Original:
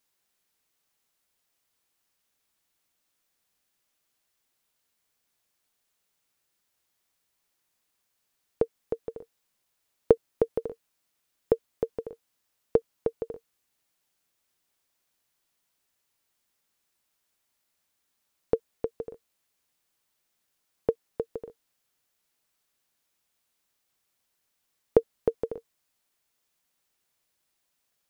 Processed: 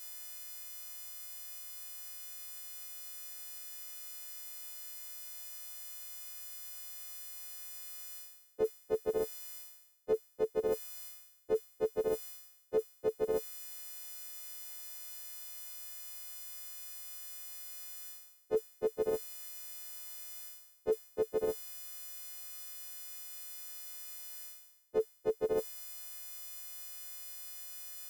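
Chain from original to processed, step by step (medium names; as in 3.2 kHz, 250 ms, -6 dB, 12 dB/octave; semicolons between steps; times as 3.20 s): partials quantised in pitch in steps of 3 st; reverse; compression 16:1, threshold -47 dBFS, peak gain reduction 33 dB; reverse; band-stop 1.1 kHz, Q 14; trim +17.5 dB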